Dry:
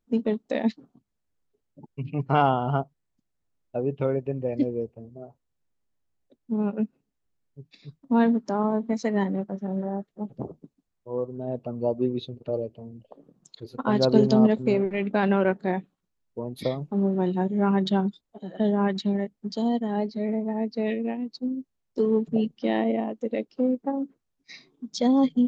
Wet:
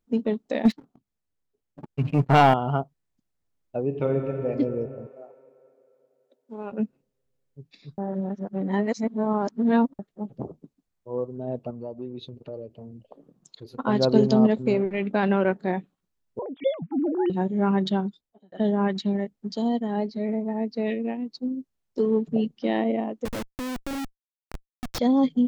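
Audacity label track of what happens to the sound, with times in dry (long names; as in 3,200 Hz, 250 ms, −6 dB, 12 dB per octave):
0.650000	2.540000	leveller curve on the samples passes 2
3.840000	4.490000	thrown reverb, RT60 3 s, DRR 3 dB
5.070000	6.720000	high-pass filter 500 Hz
7.980000	9.990000	reverse
11.700000	13.780000	downward compressor 2.5 to 1, threshold −36 dBFS
16.390000	17.300000	three sine waves on the formant tracks
17.860000	18.520000	fade out
23.250000	24.990000	comparator with hysteresis flips at −33 dBFS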